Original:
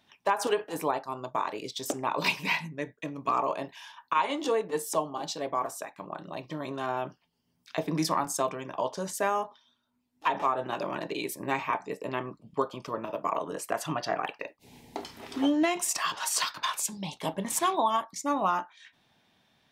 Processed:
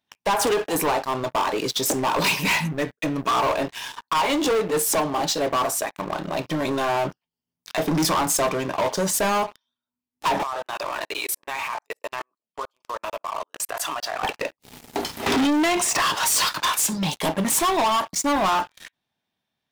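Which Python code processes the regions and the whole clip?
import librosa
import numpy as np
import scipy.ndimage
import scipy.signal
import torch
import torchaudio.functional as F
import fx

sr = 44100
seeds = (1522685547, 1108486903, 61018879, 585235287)

y = fx.chain(x, sr, fx.highpass(hz=770.0, slope=12),
    fx.level_steps(step_db=21), at=(10.43, 14.23))
y = fx.chain(y, sr, fx.air_absorb(metres=58.0),
    fx.band_squash(depth_pct=100), at=(15.26, 16.02))
y = fx.high_shelf(y, sr, hz=10000.0, db=7.0)
y = fx.leveller(y, sr, passes=5)
y = F.gain(torch.from_numpy(y), -4.5).numpy()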